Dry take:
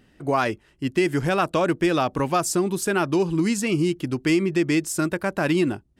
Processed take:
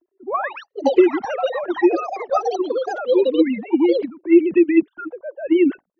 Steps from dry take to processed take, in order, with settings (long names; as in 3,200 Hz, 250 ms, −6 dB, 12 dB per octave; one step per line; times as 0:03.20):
three sine waves on the formant tracks
flanger swept by the level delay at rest 3 ms, full sweep at −14 dBFS
low-pass that shuts in the quiet parts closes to 380 Hz, open at −15 dBFS
delay with pitch and tempo change per echo 210 ms, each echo +7 semitones, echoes 2, each echo −6 dB
level +5 dB